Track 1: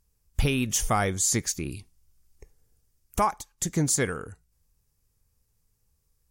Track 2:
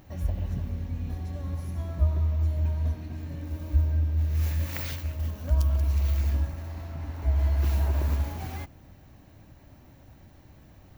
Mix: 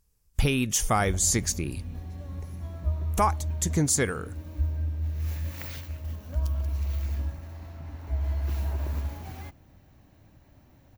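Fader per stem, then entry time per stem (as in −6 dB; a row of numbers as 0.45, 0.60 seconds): +0.5, −4.5 decibels; 0.00, 0.85 seconds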